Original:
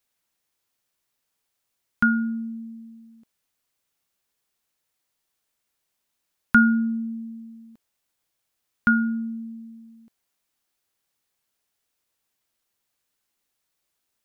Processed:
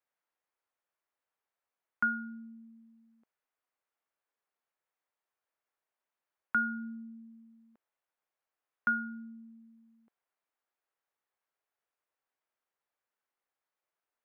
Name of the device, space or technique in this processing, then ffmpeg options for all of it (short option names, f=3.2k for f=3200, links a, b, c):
DJ mixer with the lows and highs turned down: -filter_complex "[0:a]acrossover=split=390 2100:gain=0.158 1 0.126[a][b][c];[a][b][c]amix=inputs=3:normalize=0,alimiter=limit=-15.5dB:level=0:latency=1:release=319,volume=-4dB"